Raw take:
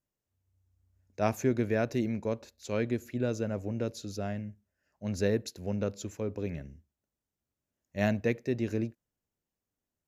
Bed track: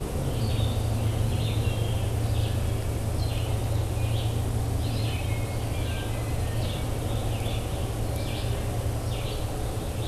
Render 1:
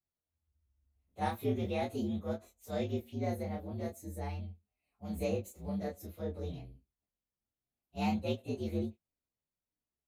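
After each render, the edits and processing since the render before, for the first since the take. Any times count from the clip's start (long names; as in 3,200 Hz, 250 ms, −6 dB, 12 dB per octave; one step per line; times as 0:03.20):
partials spread apart or drawn together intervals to 119%
chorus effect 0.45 Hz, depth 7.9 ms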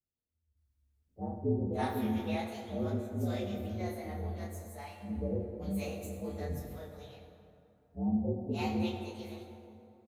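multiband delay without the direct sound lows, highs 570 ms, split 610 Hz
dense smooth reverb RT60 2.8 s, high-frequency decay 0.5×, DRR 3 dB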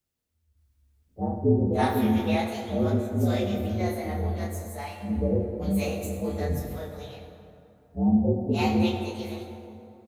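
level +9.5 dB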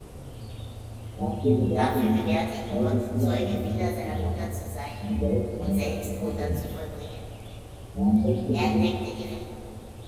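mix in bed track −13 dB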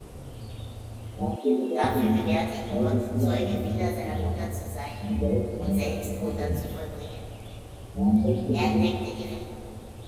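0:01.36–0:01.84: Butterworth high-pass 240 Hz 72 dB per octave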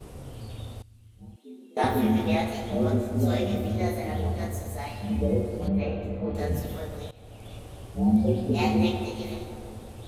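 0:00.82–0:01.77: guitar amp tone stack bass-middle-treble 6-0-2
0:05.68–0:06.35: high-frequency loss of the air 370 metres
0:07.11–0:07.56: fade in, from −17.5 dB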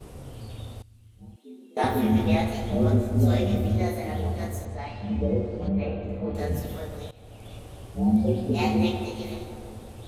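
0:02.12–0:03.83: low-shelf EQ 130 Hz +9 dB
0:04.65–0:06.09: high-frequency loss of the air 120 metres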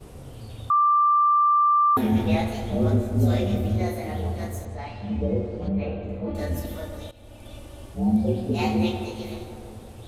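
0:00.70–0:01.97: beep over 1,180 Hz −15.5 dBFS
0:06.27–0:07.94: comb filter 3.4 ms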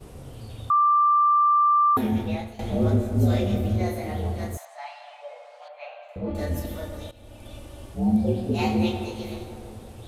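0:01.89–0:02.59: fade out, to −15 dB
0:04.57–0:06.16: Butterworth high-pass 610 Hz 72 dB per octave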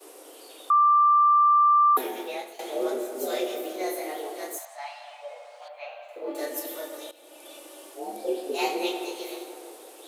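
Butterworth high-pass 300 Hz 72 dB per octave
high-shelf EQ 6,500 Hz +10.5 dB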